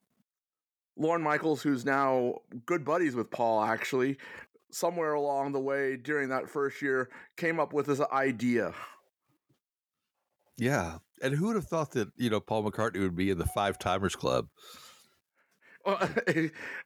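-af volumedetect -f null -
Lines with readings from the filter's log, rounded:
mean_volume: -31.5 dB
max_volume: -13.5 dB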